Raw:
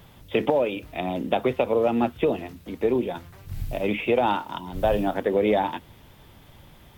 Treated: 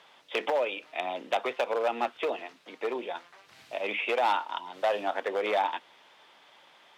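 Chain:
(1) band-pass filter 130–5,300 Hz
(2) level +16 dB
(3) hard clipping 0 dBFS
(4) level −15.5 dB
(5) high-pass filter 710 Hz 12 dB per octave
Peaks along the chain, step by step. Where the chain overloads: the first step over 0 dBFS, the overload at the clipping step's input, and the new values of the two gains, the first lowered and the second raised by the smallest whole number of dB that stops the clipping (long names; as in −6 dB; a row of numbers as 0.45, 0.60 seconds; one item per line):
−7.0, +9.0, 0.0, −15.5, −13.0 dBFS
step 2, 9.0 dB
step 2 +7 dB, step 4 −6.5 dB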